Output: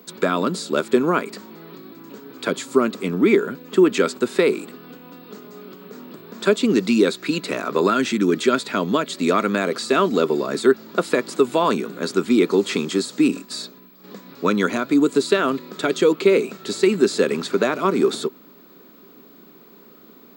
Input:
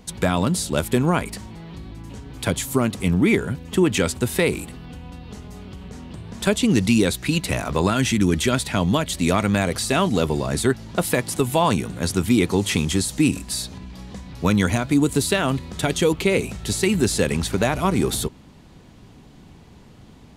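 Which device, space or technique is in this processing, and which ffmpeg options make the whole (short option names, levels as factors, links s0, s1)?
old television with a line whistle: -filter_complex "[0:a]asettb=1/sr,asplit=3[s0][s1][s2];[s0]atrim=end=13.284[s3];[s1]atrim=start=13.28:end=14.04,asetpts=PTS-STARTPTS,afade=t=in:d=0.004:c=qsin,afade=t=out:st=0.756:d=0.004:c=qsin,agate=range=0.0224:threshold=0.0355:ratio=3:detection=peak[s4];[s2]atrim=start=14.036[s5];[s3][s4]acrossfade=d=0.004:c1=hsin:c2=qsin[s6];[s6][s5]acrossfade=d=0.004:c1=qsin:c2=hsin,highpass=f=220:w=0.5412,highpass=f=220:w=1.3066,equalizer=f=400:t=q:w=4:g=6,equalizer=f=800:t=q:w=4:g=-8,equalizer=f=1300:t=q:w=4:g=6,equalizer=f=2000:t=q:w=4:g=-4,equalizer=f=3000:t=q:w=4:g=-6,equalizer=f=5900:t=q:w=4:g=-8,lowpass=f=6900:w=0.5412,lowpass=f=6900:w=1.3066,aeval=exprs='val(0)+0.00282*sin(2*PI*15734*n/s)':c=same,volume=1.19"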